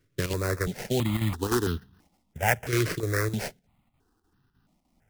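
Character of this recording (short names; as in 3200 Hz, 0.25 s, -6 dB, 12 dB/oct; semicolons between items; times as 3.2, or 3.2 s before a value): aliases and images of a low sample rate 3600 Hz, jitter 20%; chopped level 3.3 Hz, depth 60%, duty 85%; notches that jump at a steady rate 3 Hz 220–2200 Hz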